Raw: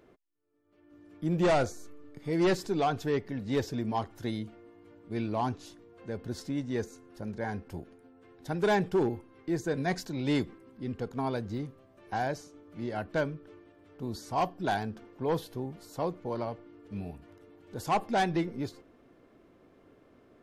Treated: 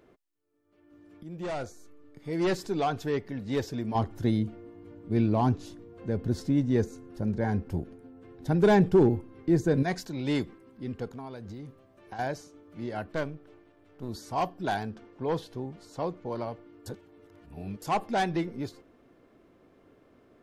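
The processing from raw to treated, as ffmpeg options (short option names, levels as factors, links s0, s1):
-filter_complex "[0:a]asettb=1/sr,asplit=3[s0][s1][s2];[s0]atrim=end=3.954[s3];[s1]atrim=start=3.95:end=9.83,asetpts=PTS-STARTPTS,afade=t=in:d=0.004:c=qsin,afade=t=out:st=5.876:d=0.004:c=qsin,lowshelf=f=440:g=11[s4];[s2]atrim=start=9.826[s5];[s3][s4]acrossfade=d=0.004:c1=hsin:c2=qsin[s6];[s6][s5]acrossfade=d=0.004:c1=qsin:c2=hsin,asettb=1/sr,asplit=3[s7][s8][s9];[s7]atrim=end=11.114[s10];[s8]atrim=start=11.11:end=12.19,asetpts=PTS-STARTPTS,afade=t=in:d=0.004:c=qsin,afade=t=out:st=1.076:d=0.004:c=qsin,acompressor=threshold=0.0141:ratio=6:attack=3.2:release=140:knee=1:detection=peak[s11];[s9]atrim=start=12.186[s12];[s10][s11]acrossfade=d=0.004:c1=hsin:c2=qsin[s13];[s13][s12]acrossfade=d=0.004:c1=qsin:c2=hsin,asettb=1/sr,asplit=3[s14][s15][s16];[s14]atrim=end=13.124[s17];[s15]atrim=start=13.12:end=14.09,asetpts=PTS-STARTPTS,afade=t=in:d=0.004:c=qsin,afade=t=out:st=0.966:d=0.004:c=qsin,aeval=exprs='if(lt(val(0),0),0.447*val(0),val(0))':c=same[s18];[s16]atrim=start=14.086[s19];[s17][s18]acrossfade=d=0.004:c1=hsin:c2=qsin[s20];[s20][s19]acrossfade=d=0.004:c1=qsin:c2=hsin,asettb=1/sr,asplit=3[s21][s22][s23];[s21]atrim=end=14.914[s24];[s22]atrim=start=14.91:end=16.32,asetpts=PTS-STARTPTS,afade=t=in:d=0.004:c=qsin,afade=t=out:st=1.406:d=0.004:c=qsin,lowpass=7900[s25];[s23]atrim=start=16.316[s26];[s24][s25]acrossfade=d=0.004:c1=hsin:c2=qsin[s27];[s27][s26]acrossfade=d=0.004:c1=qsin:c2=hsin,asplit=4[s28][s29][s30][s31];[s28]atrim=end=1.23,asetpts=PTS-STARTPTS,afade=t=out:st=1.226:d=0.004:c=hsin:silence=0.199526[s32];[s29]atrim=start=1.23:end=16.862,asetpts=PTS-STARTPTS,afade=t=in:d=1.48:silence=0.199526[s33];[s30]atrim=start=16.858:end=17.822,asetpts=PTS-STARTPTS,areverse[s34];[s31]atrim=start=17.818[s35];[s32][s33]concat=n=2:v=0:a=1[s36];[s36][s34]acrossfade=d=0.004:c1=hsin:c2=hsin[s37];[s37][s35]acrossfade=d=0.004:c1=hsin:c2=hsin"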